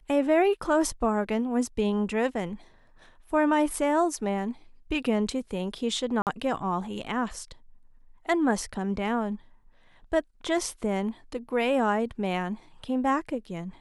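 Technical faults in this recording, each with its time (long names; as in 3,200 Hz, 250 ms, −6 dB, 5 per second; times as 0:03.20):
0:06.22–0:06.27: drop-out 48 ms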